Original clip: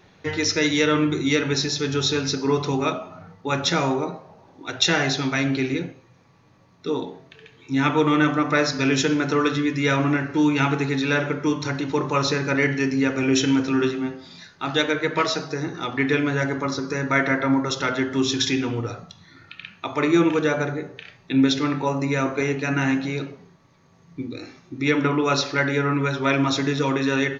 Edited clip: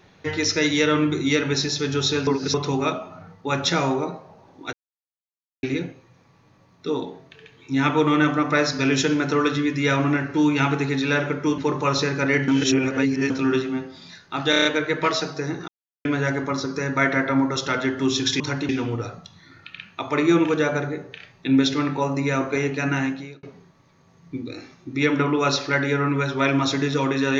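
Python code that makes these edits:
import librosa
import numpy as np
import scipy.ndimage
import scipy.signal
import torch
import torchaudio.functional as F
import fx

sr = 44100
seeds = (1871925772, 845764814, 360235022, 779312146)

y = fx.edit(x, sr, fx.reverse_span(start_s=2.27, length_s=0.27),
    fx.silence(start_s=4.73, length_s=0.9),
    fx.move(start_s=11.58, length_s=0.29, to_s=18.54),
    fx.reverse_span(start_s=12.77, length_s=0.82),
    fx.stutter(start_s=14.79, slice_s=0.03, count=6),
    fx.silence(start_s=15.82, length_s=0.37),
    fx.fade_out_span(start_s=22.75, length_s=0.53), tone=tone)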